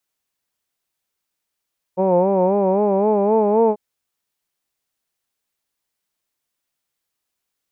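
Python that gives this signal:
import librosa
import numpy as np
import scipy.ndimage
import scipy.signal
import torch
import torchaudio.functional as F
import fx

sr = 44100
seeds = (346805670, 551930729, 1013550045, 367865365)

y = fx.formant_vowel(sr, seeds[0], length_s=1.79, hz=181.0, glide_st=3.5, vibrato_hz=3.8, vibrato_st=0.9, f1_hz=500.0, f2_hz=900.0, f3_hz=2400.0)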